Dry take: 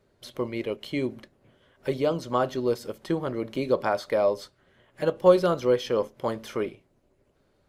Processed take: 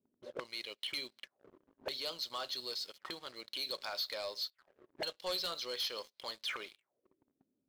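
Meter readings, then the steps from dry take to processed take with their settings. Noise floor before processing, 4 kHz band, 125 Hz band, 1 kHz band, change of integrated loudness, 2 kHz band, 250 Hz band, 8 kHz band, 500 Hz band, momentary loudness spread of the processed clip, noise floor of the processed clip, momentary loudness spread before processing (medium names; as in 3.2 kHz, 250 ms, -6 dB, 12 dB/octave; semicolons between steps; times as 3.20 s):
-67 dBFS, +4.0 dB, -29.5 dB, -15.5 dB, -13.0 dB, -7.0 dB, -25.5 dB, no reading, -21.5 dB, 10 LU, under -85 dBFS, 11 LU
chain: auto-wah 240–4200 Hz, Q 5.6, up, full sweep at -29.5 dBFS; waveshaping leveller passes 3; trim +1.5 dB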